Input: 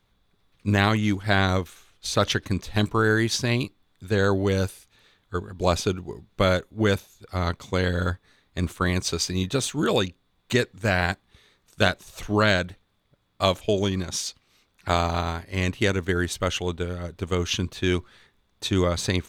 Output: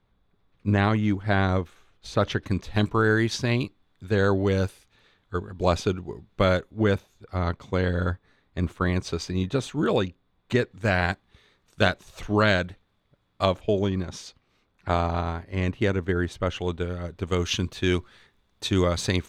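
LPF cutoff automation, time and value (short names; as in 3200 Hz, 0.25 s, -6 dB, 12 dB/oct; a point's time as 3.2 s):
LPF 6 dB/oct
1400 Hz
from 2.43 s 3200 Hz
from 6.83 s 1700 Hz
from 10.71 s 3700 Hz
from 13.45 s 1400 Hz
from 16.6 s 3500 Hz
from 17.31 s 8700 Hz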